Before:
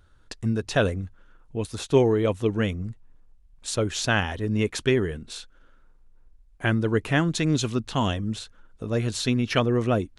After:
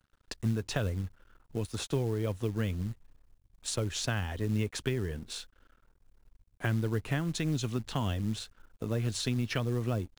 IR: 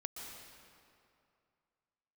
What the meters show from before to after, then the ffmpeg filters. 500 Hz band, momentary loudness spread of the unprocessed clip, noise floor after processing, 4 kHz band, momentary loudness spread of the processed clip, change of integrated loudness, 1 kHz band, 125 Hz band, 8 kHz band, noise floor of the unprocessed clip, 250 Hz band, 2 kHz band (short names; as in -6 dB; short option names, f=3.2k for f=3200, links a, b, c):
-11.5 dB, 14 LU, -70 dBFS, -7.0 dB, 10 LU, -8.5 dB, -11.0 dB, -4.5 dB, -5.0 dB, -56 dBFS, -8.5 dB, -10.5 dB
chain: -filter_complex "[0:a]acrossover=split=130[a][b];[b]acompressor=threshold=-29dB:ratio=8[c];[a][c]amix=inputs=2:normalize=0,aeval=exprs='sgn(val(0))*max(abs(val(0))-0.00178,0)':c=same,acrusher=bits=6:mode=log:mix=0:aa=0.000001,volume=-1.5dB"